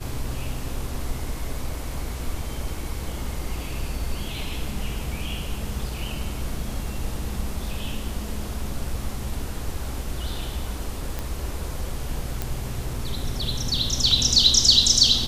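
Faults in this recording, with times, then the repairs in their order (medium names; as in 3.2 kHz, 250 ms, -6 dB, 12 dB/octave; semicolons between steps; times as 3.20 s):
11.19 s: pop
12.42 s: pop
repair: de-click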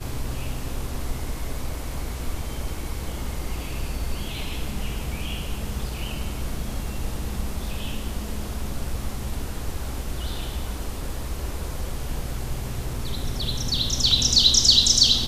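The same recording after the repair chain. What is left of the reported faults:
nothing left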